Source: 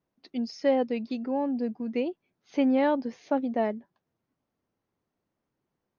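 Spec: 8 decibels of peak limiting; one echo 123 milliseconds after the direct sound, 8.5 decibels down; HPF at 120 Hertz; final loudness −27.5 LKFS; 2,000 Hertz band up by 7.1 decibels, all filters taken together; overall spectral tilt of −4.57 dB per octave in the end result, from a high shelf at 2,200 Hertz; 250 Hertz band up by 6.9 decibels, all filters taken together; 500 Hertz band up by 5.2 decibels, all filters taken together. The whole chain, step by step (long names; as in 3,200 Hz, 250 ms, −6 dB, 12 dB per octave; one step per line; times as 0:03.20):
high-pass filter 120 Hz
parametric band 250 Hz +6.5 dB
parametric band 500 Hz +4 dB
parametric band 2,000 Hz +4.5 dB
high-shelf EQ 2,200 Hz +7 dB
brickwall limiter −16 dBFS
single-tap delay 123 ms −8.5 dB
level −2.5 dB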